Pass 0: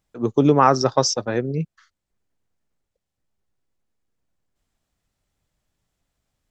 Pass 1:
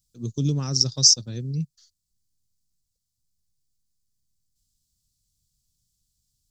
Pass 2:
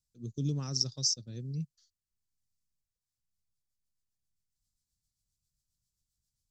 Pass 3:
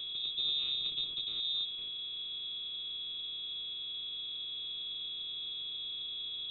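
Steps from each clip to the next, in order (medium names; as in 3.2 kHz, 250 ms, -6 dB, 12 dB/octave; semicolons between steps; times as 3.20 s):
FFT filter 140 Hz 0 dB, 820 Hz -29 dB, 2.1 kHz -21 dB, 4.6 kHz +8 dB
rotary cabinet horn 1.1 Hz, later 7.5 Hz, at 2.82 s; trim -8.5 dB
spectral levelling over time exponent 0.2; whistle 440 Hz -33 dBFS; frequency inversion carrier 3.8 kHz; trim -5.5 dB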